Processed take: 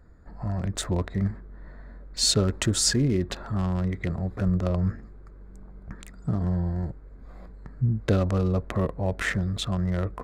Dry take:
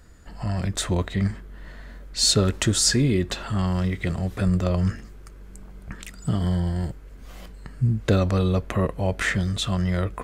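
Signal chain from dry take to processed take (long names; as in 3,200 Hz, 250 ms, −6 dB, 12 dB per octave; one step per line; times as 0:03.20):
adaptive Wiener filter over 15 samples
level −2.5 dB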